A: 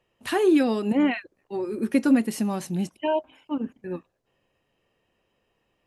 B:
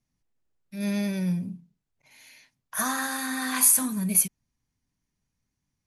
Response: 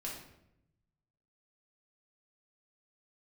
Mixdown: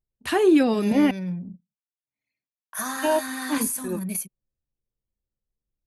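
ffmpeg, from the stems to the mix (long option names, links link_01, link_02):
-filter_complex "[0:a]volume=2dB,asplit=3[link_01][link_02][link_03];[link_01]atrim=end=1.11,asetpts=PTS-STARTPTS,afade=type=out:start_time=1.106:duration=0.004:curve=hsin[link_04];[link_02]atrim=start=1.11:end=2.89,asetpts=PTS-STARTPTS,volume=0[link_05];[link_03]atrim=start=2.89,asetpts=PTS-STARTPTS,afade=type=in:duration=0.004:curve=hsin[link_06];[link_04][link_05][link_06]concat=n=3:v=0:a=1[link_07];[1:a]agate=range=-33dB:threshold=-52dB:ratio=3:detection=peak,highpass=150,alimiter=limit=-16dB:level=0:latency=1:release=283,volume=-1.5dB[link_08];[link_07][link_08]amix=inputs=2:normalize=0,anlmdn=0.398,equalizer=frequency=71:width_type=o:width=0.4:gain=8"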